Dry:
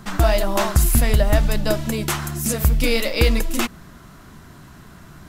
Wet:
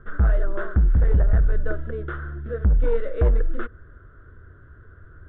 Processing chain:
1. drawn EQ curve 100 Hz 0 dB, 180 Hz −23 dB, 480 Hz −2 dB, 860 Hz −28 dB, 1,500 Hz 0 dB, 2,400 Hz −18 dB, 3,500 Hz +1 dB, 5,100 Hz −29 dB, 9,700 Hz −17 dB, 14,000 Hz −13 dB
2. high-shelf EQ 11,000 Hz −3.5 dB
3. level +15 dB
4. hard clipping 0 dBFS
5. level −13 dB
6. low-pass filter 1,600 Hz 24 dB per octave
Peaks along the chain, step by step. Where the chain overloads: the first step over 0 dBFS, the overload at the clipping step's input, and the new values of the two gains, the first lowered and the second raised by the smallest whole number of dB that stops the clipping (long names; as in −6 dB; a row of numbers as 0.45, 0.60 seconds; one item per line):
−5.5, −5.5, +9.5, 0.0, −13.0, −12.5 dBFS
step 3, 9.5 dB
step 3 +5 dB, step 5 −3 dB